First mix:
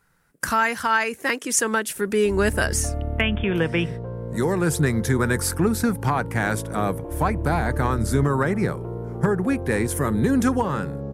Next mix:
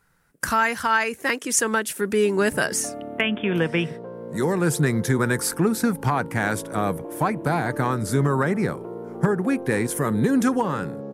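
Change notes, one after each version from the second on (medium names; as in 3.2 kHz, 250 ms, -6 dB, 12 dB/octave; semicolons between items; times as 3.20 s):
background: add high-pass 190 Hz 24 dB/octave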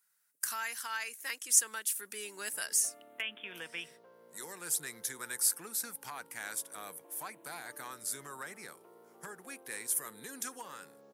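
speech -3.5 dB; master: add differentiator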